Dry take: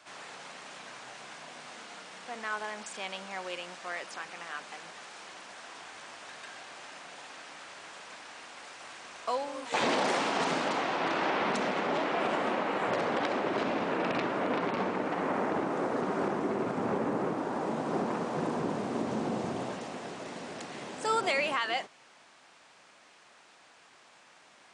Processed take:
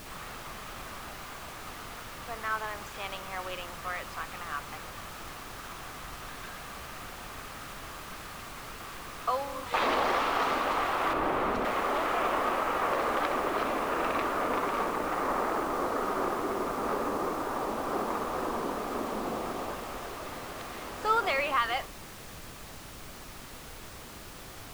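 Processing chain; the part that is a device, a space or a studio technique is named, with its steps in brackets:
horn gramophone (band-pass filter 290–4,100 Hz; parametric band 1,200 Hz +9 dB 0.31 octaves; tape wow and flutter; pink noise bed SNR 12 dB)
0:11.13–0:11.65: tilt shelving filter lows +6 dB, about 680 Hz

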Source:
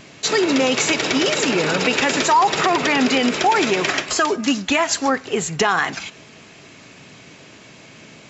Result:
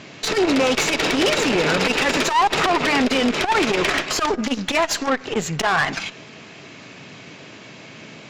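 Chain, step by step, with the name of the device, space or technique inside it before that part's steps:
valve radio (band-pass filter 88–5,500 Hz; tube saturation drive 18 dB, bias 0.55; saturating transformer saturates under 310 Hz)
level +6 dB

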